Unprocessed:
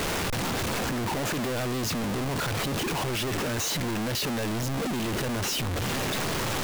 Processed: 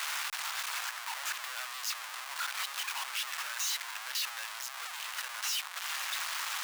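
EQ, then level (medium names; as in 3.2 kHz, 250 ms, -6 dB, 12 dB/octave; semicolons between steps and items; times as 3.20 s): inverse Chebyshev high-pass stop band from 300 Hz, stop band 60 dB; -3.5 dB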